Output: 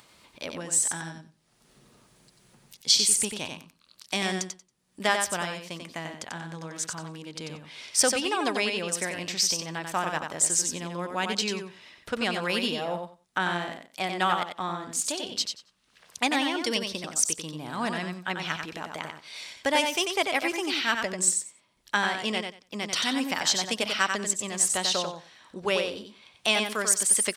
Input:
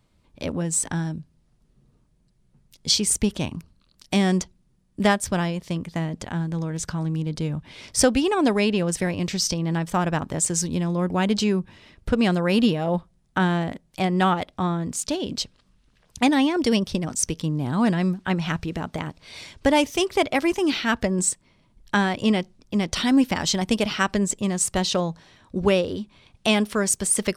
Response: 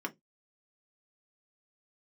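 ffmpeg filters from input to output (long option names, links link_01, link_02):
-filter_complex "[0:a]highpass=frequency=1100:poles=1,acompressor=mode=upward:threshold=-44dB:ratio=2.5,asplit=2[link_01][link_02];[link_02]aecho=0:1:92|184|276:0.531|0.0849|0.0136[link_03];[link_01][link_03]amix=inputs=2:normalize=0"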